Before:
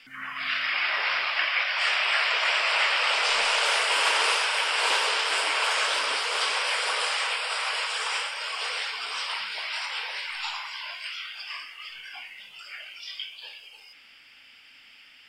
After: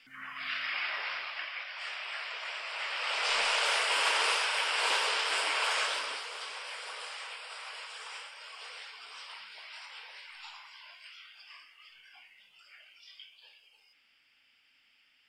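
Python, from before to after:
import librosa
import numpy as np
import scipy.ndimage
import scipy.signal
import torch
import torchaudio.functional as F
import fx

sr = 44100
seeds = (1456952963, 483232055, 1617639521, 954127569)

y = fx.gain(x, sr, db=fx.line((0.79, -7.5), (1.62, -15.0), (2.72, -15.0), (3.34, -5.0), (5.8, -5.0), (6.39, -15.0)))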